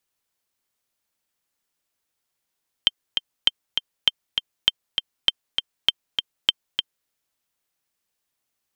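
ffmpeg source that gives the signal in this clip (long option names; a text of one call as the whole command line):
ffmpeg -f lavfi -i "aevalsrc='pow(10,(-2-6*gte(mod(t,2*60/199),60/199))/20)*sin(2*PI*3140*mod(t,60/199))*exp(-6.91*mod(t,60/199)/0.03)':duration=4.22:sample_rate=44100" out.wav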